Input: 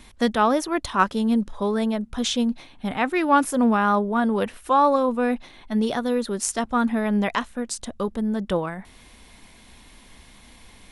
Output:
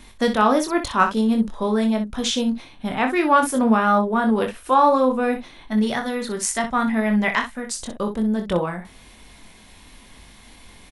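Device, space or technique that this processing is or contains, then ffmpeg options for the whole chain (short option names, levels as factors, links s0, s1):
slapback doubling: -filter_complex "[0:a]asettb=1/sr,asplit=3[s0][s1][s2];[s0]atrim=end=5.724[s3];[s1]atrim=start=5.72:end=7.7,asetpts=PTS-STARTPTS,afade=t=in:d=0.004:c=qsin,afade=t=out:st=1.976:d=0.004:c=qsin,equalizer=f=315:t=o:w=0.33:g=-9,equalizer=f=500:t=o:w=0.33:g=-5,equalizer=f=2000:t=o:w=0.33:g=8[s4];[s2]atrim=start=7.696[s5];[s3][s4]acrossfade=d=0.004:c1=hsin:c2=qsin[s6];[s6][s5]acrossfade=d=0.004:c1=qsin:c2=hsin,asplit=3[s7][s8][s9];[s8]adelay=23,volume=0.531[s10];[s9]adelay=62,volume=0.335[s11];[s7][s10][s11]amix=inputs=3:normalize=0,volume=1.12"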